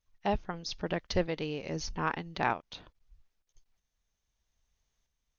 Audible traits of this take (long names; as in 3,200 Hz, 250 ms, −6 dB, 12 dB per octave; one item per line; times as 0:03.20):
tremolo saw up 0.79 Hz, depth 50%